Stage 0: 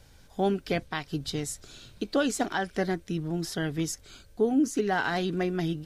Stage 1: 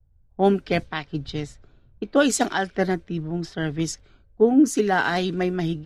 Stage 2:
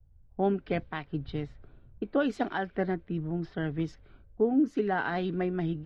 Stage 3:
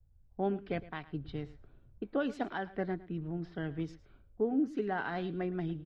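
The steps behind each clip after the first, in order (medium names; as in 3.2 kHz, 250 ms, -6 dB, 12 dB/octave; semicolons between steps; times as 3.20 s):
level-controlled noise filter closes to 750 Hz, open at -23 dBFS; three bands expanded up and down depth 70%; trim +5.5 dB
compression 1.5:1, threshold -38 dBFS, peak gain reduction 9.5 dB; distance through air 360 m; trim +1 dB
delay 110 ms -18 dB; trim -5.5 dB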